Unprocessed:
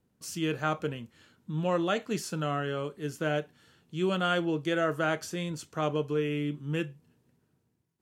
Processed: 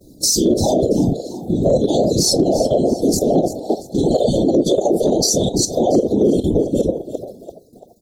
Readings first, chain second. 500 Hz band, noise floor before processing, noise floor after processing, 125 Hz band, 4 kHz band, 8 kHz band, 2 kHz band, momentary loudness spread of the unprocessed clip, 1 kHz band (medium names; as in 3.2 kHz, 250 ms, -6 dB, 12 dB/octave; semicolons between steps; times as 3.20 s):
+16.0 dB, -75 dBFS, -45 dBFS, +11.5 dB, +15.5 dB, +24.0 dB, under -25 dB, 10 LU, +7.5 dB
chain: coarse spectral quantiser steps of 15 dB; compression 1.5:1, threshold -47 dBFS, peak gain reduction 8.5 dB; comb 3.7 ms, depth 75%; simulated room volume 360 m³, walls furnished, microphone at 4.3 m; reverb removal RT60 1.2 s; dynamic bell 3.5 kHz, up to +5 dB, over -46 dBFS, Q 0.77; Chebyshev band-stop 660–3900 Hz, order 5; level held to a coarse grid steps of 14 dB; bass shelf 140 Hz -8 dB; whisper effect; frequency-shifting echo 339 ms, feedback 36%, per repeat +56 Hz, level -15 dB; loudness maximiser +34 dB; trim -5.5 dB